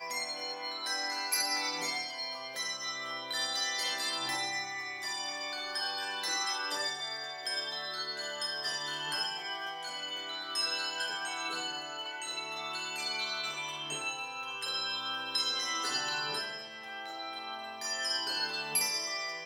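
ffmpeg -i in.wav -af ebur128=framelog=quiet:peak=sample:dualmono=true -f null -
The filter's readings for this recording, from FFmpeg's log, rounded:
Integrated loudness:
  I:         -30.6 LUFS
  Threshold: -40.5 LUFS
Loudness range:
  LRA:         2.0 LU
  Threshold: -50.7 LUFS
  LRA low:   -31.8 LUFS
  LRA high:  -29.8 LUFS
Sample peak:
  Peak:      -17.4 dBFS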